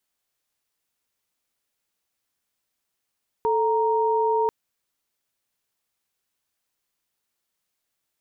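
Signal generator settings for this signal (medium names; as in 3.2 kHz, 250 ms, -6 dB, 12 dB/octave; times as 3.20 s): chord A4/A#5 sine, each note -21.5 dBFS 1.04 s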